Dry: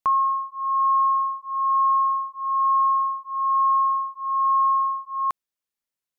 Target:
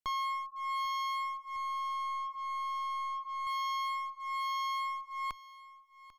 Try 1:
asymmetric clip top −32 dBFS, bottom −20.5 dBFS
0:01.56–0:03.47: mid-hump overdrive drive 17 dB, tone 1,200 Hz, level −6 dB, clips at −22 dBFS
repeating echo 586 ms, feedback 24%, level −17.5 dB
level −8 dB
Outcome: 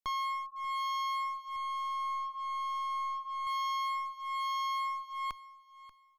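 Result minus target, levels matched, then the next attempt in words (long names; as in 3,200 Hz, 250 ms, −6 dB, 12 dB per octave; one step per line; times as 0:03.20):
echo 208 ms early
asymmetric clip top −32 dBFS, bottom −20.5 dBFS
0:01.56–0:03.47: mid-hump overdrive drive 17 dB, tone 1,200 Hz, level −6 dB, clips at −22 dBFS
repeating echo 794 ms, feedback 24%, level −17.5 dB
level −8 dB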